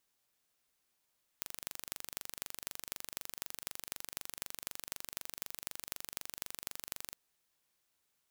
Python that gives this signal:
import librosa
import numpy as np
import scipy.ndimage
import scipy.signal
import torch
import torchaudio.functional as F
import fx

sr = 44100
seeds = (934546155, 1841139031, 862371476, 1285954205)

y = fx.impulse_train(sr, length_s=5.73, per_s=24.0, accent_every=6, level_db=-9.0)